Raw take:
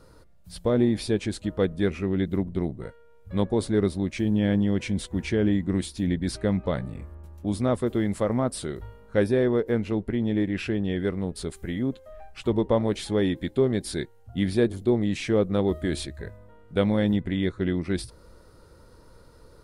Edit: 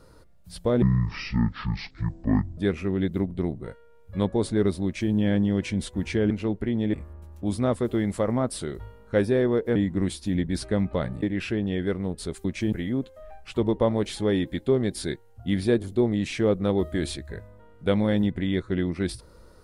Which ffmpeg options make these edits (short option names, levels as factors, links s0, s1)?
-filter_complex "[0:a]asplit=9[s0][s1][s2][s3][s4][s5][s6][s7][s8];[s0]atrim=end=0.824[s9];[s1]atrim=start=0.82:end=1.75,asetpts=PTS-STARTPTS,asetrate=23373,aresample=44100,atrim=end_sample=77383,asetpts=PTS-STARTPTS[s10];[s2]atrim=start=1.746:end=5.482[s11];[s3]atrim=start=9.768:end=10.402[s12];[s4]atrim=start=6.948:end=9.772[s13];[s5]atrim=start=5.478:end=6.952[s14];[s6]atrim=start=10.398:end=11.622[s15];[s7]atrim=start=4.018:end=4.302[s16];[s8]atrim=start=11.618[s17];[s9][s10]acrossfade=d=0.004:c1=hsin:c2=hsin[s18];[s18][s11]acrossfade=d=0.004:c1=hsin:c2=hsin[s19];[s19][s12]acrossfade=d=0.004:c1=hsin:c2=hsin[s20];[s20][s13]acrossfade=d=0.004:c1=hsin:c2=hsin[s21];[s21][s14]acrossfade=d=0.004:c1=hsin:c2=hsin[s22];[s22][s15]acrossfade=d=0.004:c1=hsin:c2=hsin[s23];[s23][s16]acrossfade=d=0.004:c1=hsin:c2=hsin[s24];[s24][s17]acrossfade=d=0.004:c1=hsin:c2=hsin"